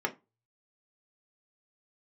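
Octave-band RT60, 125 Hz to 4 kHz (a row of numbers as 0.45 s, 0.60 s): 0.70 s, 0.25 s, 0.25 s, 0.25 s, 0.20 s, 0.15 s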